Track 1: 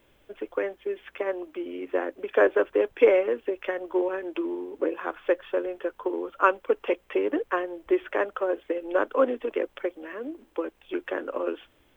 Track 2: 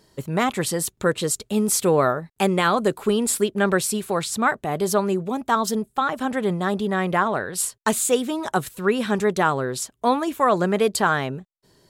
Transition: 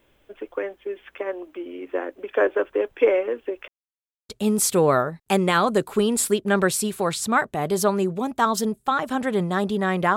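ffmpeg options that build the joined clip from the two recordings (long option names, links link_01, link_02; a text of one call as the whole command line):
ffmpeg -i cue0.wav -i cue1.wav -filter_complex "[0:a]apad=whole_dur=10.16,atrim=end=10.16,asplit=2[link_01][link_02];[link_01]atrim=end=3.68,asetpts=PTS-STARTPTS,afade=type=out:start_time=3.676:duration=0.004:curve=hsin[link_03];[link_02]atrim=start=3.68:end=4.29,asetpts=PTS-STARTPTS,volume=0[link_04];[1:a]atrim=start=1.39:end=7.26,asetpts=PTS-STARTPTS,afade=type=in:duration=0.004:curve=hsin[link_05];[link_03][link_04][link_05]concat=n=3:v=0:a=1" out.wav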